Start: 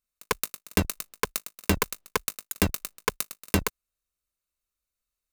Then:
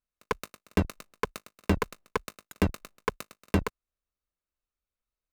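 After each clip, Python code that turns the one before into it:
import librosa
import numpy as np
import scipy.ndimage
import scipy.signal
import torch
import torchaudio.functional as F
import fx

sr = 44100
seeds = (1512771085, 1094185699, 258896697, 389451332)

y = fx.lowpass(x, sr, hz=1400.0, slope=6)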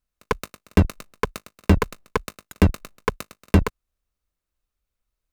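y = fx.low_shelf(x, sr, hz=150.0, db=8.0)
y = F.gain(torch.from_numpy(y), 5.5).numpy()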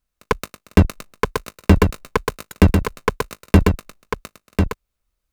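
y = x + 10.0 ** (-5.5 / 20.0) * np.pad(x, (int(1046 * sr / 1000.0), 0))[:len(x)]
y = F.gain(torch.from_numpy(y), 4.0).numpy()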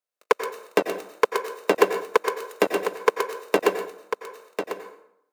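y = fx.ladder_highpass(x, sr, hz=390.0, resonance_pct=40)
y = fx.rev_plate(y, sr, seeds[0], rt60_s=0.74, hf_ratio=0.7, predelay_ms=80, drr_db=3.5)
y = fx.upward_expand(y, sr, threshold_db=-36.0, expansion=1.5)
y = F.gain(torch.from_numpy(y), 7.0).numpy()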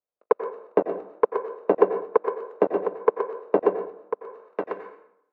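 y = fx.filter_sweep_lowpass(x, sr, from_hz=820.0, to_hz=2000.0, start_s=4.26, end_s=4.98, q=0.94)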